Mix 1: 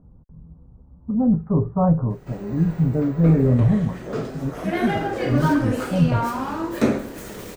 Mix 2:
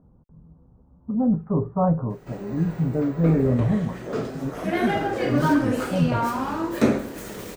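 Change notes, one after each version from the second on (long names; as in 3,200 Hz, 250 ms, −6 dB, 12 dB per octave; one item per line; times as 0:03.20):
speech: add low-shelf EQ 130 Hz −10.5 dB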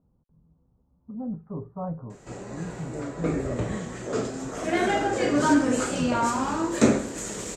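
speech −12.0 dB
background: add low-pass with resonance 7,400 Hz, resonance Q 5.7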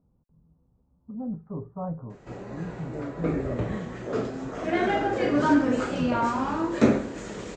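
master: add high-frequency loss of the air 170 metres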